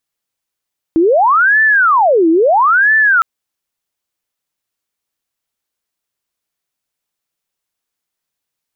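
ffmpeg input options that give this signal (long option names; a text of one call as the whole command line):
ffmpeg -f lavfi -i "aevalsrc='0.447*sin(2*PI*(1041*t-719/(2*PI*0.75)*sin(2*PI*0.75*t)))':duration=2.26:sample_rate=44100" out.wav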